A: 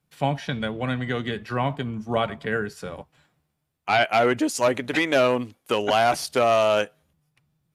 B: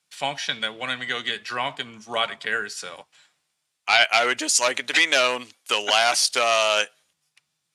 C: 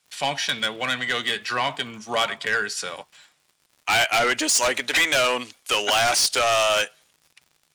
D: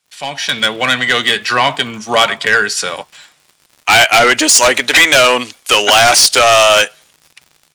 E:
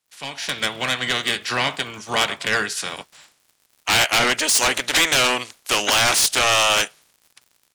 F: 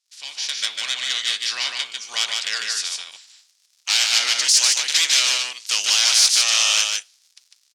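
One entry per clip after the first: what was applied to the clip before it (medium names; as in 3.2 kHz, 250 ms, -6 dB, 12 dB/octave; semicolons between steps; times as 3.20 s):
frequency weighting ITU-R 468
saturation -20 dBFS, distortion -7 dB; crackle 110 per s -49 dBFS; trim +5 dB
level rider gain up to 13 dB
spectral peaks clipped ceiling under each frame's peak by 14 dB; trim -9 dB
band-pass filter 5.2 kHz, Q 1.8; delay 150 ms -3.5 dB; trim +6 dB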